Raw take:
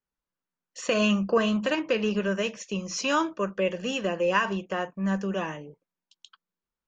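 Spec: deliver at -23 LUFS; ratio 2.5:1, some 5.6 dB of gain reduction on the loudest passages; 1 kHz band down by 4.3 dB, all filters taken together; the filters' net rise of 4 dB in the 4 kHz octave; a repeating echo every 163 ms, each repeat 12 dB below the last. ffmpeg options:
-af "equalizer=f=1000:t=o:g=-5.5,equalizer=f=4000:t=o:g=7,acompressor=threshold=0.0447:ratio=2.5,aecho=1:1:163|326|489:0.251|0.0628|0.0157,volume=2.24"

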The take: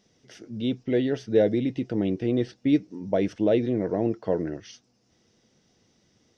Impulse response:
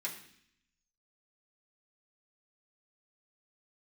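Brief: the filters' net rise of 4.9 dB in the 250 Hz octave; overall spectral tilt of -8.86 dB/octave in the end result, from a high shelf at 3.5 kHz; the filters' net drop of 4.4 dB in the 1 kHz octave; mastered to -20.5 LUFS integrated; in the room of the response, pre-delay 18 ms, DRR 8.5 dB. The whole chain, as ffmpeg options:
-filter_complex "[0:a]equalizer=f=250:t=o:g=6.5,equalizer=f=1000:t=o:g=-8.5,highshelf=f=3500:g=-4.5,asplit=2[s0][s1];[1:a]atrim=start_sample=2205,adelay=18[s2];[s1][s2]afir=irnorm=-1:irlink=0,volume=0.316[s3];[s0][s3]amix=inputs=2:normalize=0,volume=1.19"

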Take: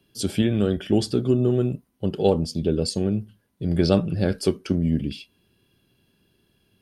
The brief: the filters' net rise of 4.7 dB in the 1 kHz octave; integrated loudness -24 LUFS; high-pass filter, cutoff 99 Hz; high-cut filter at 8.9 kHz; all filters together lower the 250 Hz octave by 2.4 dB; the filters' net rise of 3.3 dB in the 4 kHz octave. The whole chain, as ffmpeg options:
-af "highpass=99,lowpass=8900,equalizer=f=250:t=o:g=-3.5,equalizer=f=1000:t=o:g=7,equalizer=f=4000:t=o:g=4,volume=1.06"

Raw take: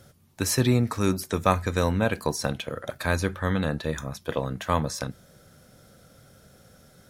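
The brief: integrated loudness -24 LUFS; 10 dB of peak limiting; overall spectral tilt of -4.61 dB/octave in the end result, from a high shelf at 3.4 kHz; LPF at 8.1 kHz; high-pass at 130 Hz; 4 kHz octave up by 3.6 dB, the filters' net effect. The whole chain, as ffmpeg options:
-af "highpass=130,lowpass=8100,highshelf=f=3400:g=-4,equalizer=f=4000:t=o:g=7.5,volume=1.88,alimiter=limit=0.335:level=0:latency=1"

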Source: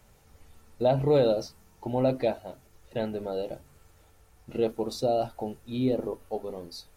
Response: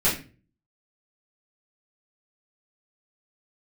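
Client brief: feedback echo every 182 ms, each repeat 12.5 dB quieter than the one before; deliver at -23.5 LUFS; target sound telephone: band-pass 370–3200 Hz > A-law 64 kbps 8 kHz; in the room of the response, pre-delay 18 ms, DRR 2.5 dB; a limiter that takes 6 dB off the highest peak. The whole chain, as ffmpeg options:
-filter_complex "[0:a]alimiter=limit=0.106:level=0:latency=1,aecho=1:1:182|364|546:0.237|0.0569|0.0137,asplit=2[s0][s1];[1:a]atrim=start_sample=2205,adelay=18[s2];[s1][s2]afir=irnorm=-1:irlink=0,volume=0.15[s3];[s0][s3]amix=inputs=2:normalize=0,highpass=370,lowpass=3200,volume=2.66" -ar 8000 -c:a pcm_alaw

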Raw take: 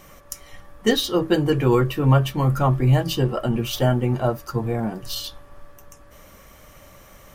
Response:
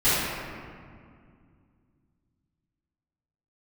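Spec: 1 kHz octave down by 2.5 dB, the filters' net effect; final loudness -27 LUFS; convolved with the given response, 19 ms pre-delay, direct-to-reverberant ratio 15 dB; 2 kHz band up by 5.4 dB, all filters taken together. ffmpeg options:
-filter_complex "[0:a]equalizer=f=1000:t=o:g=-6,equalizer=f=2000:t=o:g=8.5,asplit=2[s0][s1];[1:a]atrim=start_sample=2205,adelay=19[s2];[s1][s2]afir=irnorm=-1:irlink=0,volume=0.0224[s3];[s0][s3]amix=inputs=2:normalize=0,volume=0.501"

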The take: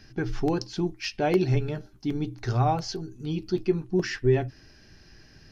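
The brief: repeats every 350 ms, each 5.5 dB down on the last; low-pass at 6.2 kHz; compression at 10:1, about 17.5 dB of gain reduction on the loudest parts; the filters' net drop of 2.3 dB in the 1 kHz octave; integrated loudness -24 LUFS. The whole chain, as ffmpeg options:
-af "lowpass=6200,equalizer=f=1000:t=o:g=-3.5,acompressor=threshold=0.0178:ratio=10,aecho=1:1:350|700|1050|1400|1750|2100|2450:0.531|0.281|0.149|0.079|0.0419|0.0222|0.0118,volume=5.96"

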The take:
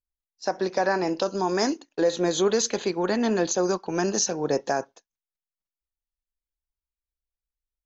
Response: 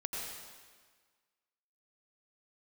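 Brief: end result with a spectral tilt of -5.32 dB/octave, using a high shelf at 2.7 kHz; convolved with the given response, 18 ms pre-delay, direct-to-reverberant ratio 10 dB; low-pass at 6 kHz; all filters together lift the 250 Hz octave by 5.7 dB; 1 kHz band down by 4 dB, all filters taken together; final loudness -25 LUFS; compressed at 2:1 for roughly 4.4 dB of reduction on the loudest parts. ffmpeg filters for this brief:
-filter_complex "[0:a]lowpass=6000,equalizer=f=250:t=o:g=8.5,equalizer=f=1000:t=o:g=-5.5,highshelf=f=2700:g=-9,acompressor=threshold=0.0708:ratio=2,asplit=2[s0][s1];[1:a]atrim=start_sample=2205,adelay=18[s2];[s1][s2]afir=irnorm=-1:irlink=0,volume=0.237[s3];[s0][s3]amix=inputs=2:normalize=0,volume=1.12"

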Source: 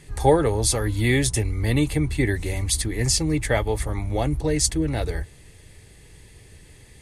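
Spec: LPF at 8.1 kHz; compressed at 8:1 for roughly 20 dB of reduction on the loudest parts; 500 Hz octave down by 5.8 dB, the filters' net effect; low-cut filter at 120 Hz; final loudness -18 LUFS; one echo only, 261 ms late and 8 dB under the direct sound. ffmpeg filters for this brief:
-af "highpass=120,lowpass=8100,equalizer=f=500:t=o:g=-7,acompressor=threshold=0.0141:ratio=8,aecho=1:1:261:0.398,volume=12.6"

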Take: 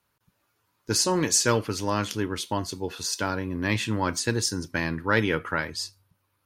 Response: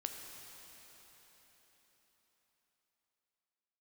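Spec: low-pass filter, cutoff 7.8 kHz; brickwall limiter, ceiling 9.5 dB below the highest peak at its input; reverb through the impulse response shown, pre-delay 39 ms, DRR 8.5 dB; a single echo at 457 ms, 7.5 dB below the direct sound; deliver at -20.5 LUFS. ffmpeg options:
-filter_complex "[0:a]lowpass=7800,alimiter=limit=0.15:level=0:latency=1,aecho=1:1:457:0.422,asplit=2[s0][s1];[1:a]atrim=start_sample=2205,adelay=39[s2];[s1][s2]afir=irnorm=-1:irlink=0,volume=0.398[s3];[s0][s3]amix=inputs=2:normalize=0,volume=2.37"

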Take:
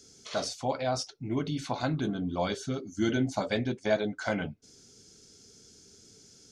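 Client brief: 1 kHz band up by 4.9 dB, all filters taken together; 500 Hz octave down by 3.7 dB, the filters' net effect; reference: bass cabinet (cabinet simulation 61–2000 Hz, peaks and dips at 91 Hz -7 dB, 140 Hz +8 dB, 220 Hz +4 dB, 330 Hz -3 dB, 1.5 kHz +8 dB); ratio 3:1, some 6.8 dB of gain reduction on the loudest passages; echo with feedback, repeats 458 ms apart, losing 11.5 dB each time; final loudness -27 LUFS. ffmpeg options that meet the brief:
-af "equalizer=f=500:t=o:g=-8.5,equalizer=f=1000:t=o:g=9,acompressor=threshold=0.0224:ratio=3,highpass=f=61:w=0.5412,highpass=f=61:w=1.3066,equalizer=f=91:t=q:w=4:g=-7,equalizer=f=140:t=q:w=4:g=8,equalizer=f=220:t=q:w=4:g=4,equalizer=f=330:t=q:w=4:g=-3,equalizer=f=1500:t=q:w=4:g=8,lowpass=f=2000:w=0.5412,lowpass=f=2000:w=1.3066,aecho=1:1:458|916|1374:0.266|0.0718|0.0194,volume=2.51"

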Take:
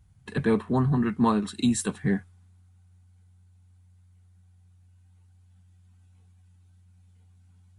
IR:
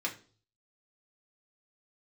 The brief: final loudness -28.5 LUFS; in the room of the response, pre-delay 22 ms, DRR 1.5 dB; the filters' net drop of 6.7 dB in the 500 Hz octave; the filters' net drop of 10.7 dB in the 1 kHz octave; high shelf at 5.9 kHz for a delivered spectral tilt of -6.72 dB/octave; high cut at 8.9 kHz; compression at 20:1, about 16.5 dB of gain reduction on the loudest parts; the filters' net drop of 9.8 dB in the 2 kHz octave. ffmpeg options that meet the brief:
-filter_complex "[0:a]lowpass=8900,equalizer=f=500:t=o:g=-6.5,equalizer=f=1000:t=o:g=-8.5,equalizer=f=2000:t=o:g=-8.5,highshelf=f=5900:g=-5.5,acompressor=threshold=0.0158:ratio=20,asplit=2[s0][s1];[1:a]atrim=start_sample=2205,adelay=22[s2];[s1][s2]afir=irnorm=-1:irlink=0,volume=0.501[s3];[s0][s3]amix=inputs=2:normalize=0,volume=3.76"

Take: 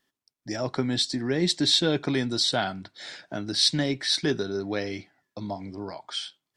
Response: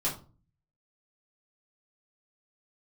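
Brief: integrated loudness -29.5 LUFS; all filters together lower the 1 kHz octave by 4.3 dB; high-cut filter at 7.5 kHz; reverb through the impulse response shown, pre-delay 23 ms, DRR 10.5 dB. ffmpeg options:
-filter_complex "[0:a]lowpass=7500,equalizer=f=1000:t=o:g=-7,asplit=2[s0][s1];[1:a]atrim=start_sample=2205,adelay=23[s2];[s1][s2]afir=irnorm=-1:irlink=0,volume=0.141[s3];[s0][s3]amix=inputs=2:normalize=0,volume=0.668"

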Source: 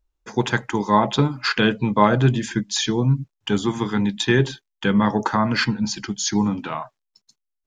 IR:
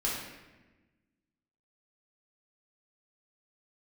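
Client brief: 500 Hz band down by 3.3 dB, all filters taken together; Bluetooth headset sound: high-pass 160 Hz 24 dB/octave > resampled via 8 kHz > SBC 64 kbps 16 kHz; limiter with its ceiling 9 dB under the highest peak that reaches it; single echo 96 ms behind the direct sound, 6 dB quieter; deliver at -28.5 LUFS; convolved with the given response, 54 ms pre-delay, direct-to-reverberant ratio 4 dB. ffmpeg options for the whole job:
-filter_complex "[0:a]equalizer=f=500:t=o:g=-4.5,alimiter=limit=0.251:level=0:latency=1,aecho=1:1:96:0.501,asplit=2[s0][s1];[1:a]atrim=start_sample=2205,adelay=54[s2];[s1][s2]afir=irnorm=-1:irlink=0,volume=0.299[s3];[s0][s3]amix=inputs=2:normalize=0,highpass=f=160:w=0.5412,highpass=f=160:w=1.3066,aresample=8000,aresample=44100,volume=0.473" -ar 16000 -c:a sbc -b:a 64k

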